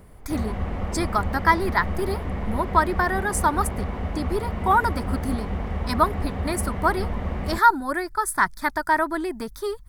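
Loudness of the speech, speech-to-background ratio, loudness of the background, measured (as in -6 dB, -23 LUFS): -24.5 LUFS, 5.5 dB, -30.0 LUFS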